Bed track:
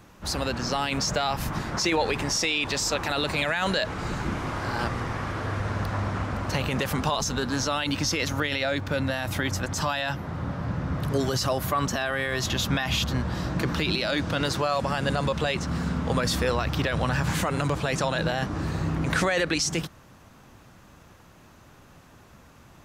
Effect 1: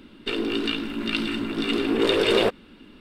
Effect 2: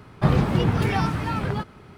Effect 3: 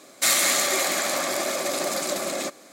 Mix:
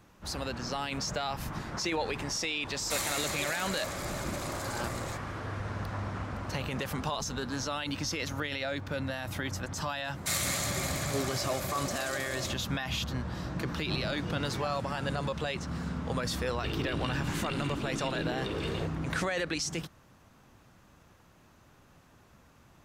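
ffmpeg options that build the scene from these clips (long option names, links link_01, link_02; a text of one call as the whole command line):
ffmpeg -i bed.wav -i cue0.wav -i cue1.wav -i cue2.wav -filter_complex "[3:a]asplit=2[link_01][link_02];[0:a]volume=-7.5dB[link_03];[1:a]acompressor=threshold=-25dB:ratio=6:attack=3.2:release=140:knee=1:detection=peak[link_04];[link_01]atrim=end=2.72,asetpts=PTS-STARTPTS,volume=-13.5dB,afade=type=in:duration=0.004:curve=hsin,afade=type=out:start_time=2.716:duration=0.004:curve=hsin,adelay=2680[link_05];[link_02]atrim=end=2.72,asetpts=PTS-STARTPTS,volume=-11dB,afade=type=in:duration=0.004:curve=hsin,afade=type=out:start_time=2.716:duration=0.004:curve=hsin,adelay=10040[link_06];[2:a]atrim=end=1.97,asetpts=PTS-STARTPTS,volume=-17.5dB,afade=type=in:duration=0.004:curve=hsin,afade=type=out:start_time=1.966:duration=0.004:curve=hsin,adelay=13680[link_07];[link_04]atrim=end=3,asetpts=PTS-STARTPTS,volume=-8dB,afade=type=in:duration=0.004:curve=hsin,afade=type=out:start_time=2.996:duration=0.004:curve=hsin,adelay=16370[link_08];[link_03][link_05][link_06][link_07][link_08]amix=inputs=5:normalize=0" out.wav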